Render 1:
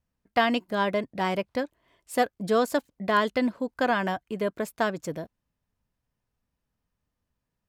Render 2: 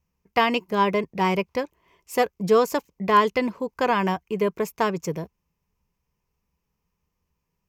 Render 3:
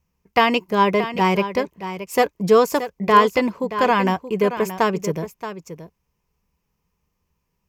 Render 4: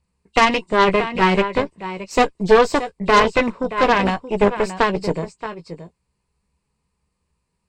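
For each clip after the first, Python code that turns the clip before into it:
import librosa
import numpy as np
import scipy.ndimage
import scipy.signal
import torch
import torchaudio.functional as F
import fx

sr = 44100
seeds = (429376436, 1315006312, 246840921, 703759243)

y1 = fx.ripple_eq(x, sr, per_octave=0.78, db=9)
y1 = F.gain(torch.from_numpy(y1), 3.0).numpy()
y2 = y1 + 10.0 ** (-11.5 / 20.0) * np.pad(y1, (int(626 * sr / 1000.0), 0))[:len(y1)]
y2 = F.gain(torch.from_numpy(y2), 4.0).numpy()
y3 = fx.freq_compress(y2, sr, knee_hz=2700.0, ratio=1.5)
y3 = fx.chorus_voices(y3, sr, voices=2, hz=0.45, base_ms=16, depth_ms=1.9, mix_pct=25)
y3 = fx.cheby_harmonics(y3, sr, harmonics=(6,), levels_db=(-14,), full_scale_db=-4.0)
y3 = F.gain(torch.from_numpy(y3), 2.5).numpy()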